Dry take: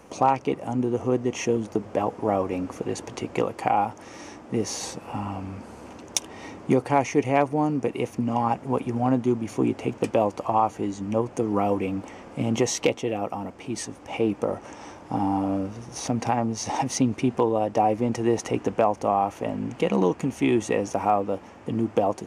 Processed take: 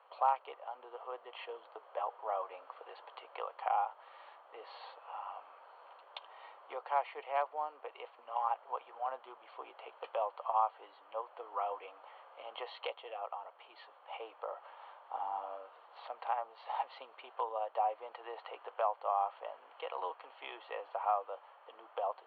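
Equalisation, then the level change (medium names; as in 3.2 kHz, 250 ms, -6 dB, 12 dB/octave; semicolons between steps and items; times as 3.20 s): steep high-pass 540 Hz 36 dB/octave; rippled Chebyshev low-pass 4.4 kHz, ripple 9 dB; distance through air 160 m; -5.0 dB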